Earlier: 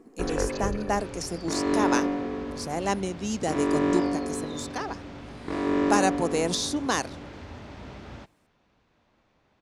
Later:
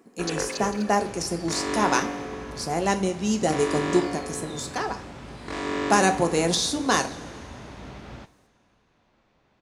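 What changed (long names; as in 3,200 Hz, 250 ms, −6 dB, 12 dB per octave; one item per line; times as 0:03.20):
first sound: add spectral tilt +3.5 dB per octave
reverb: on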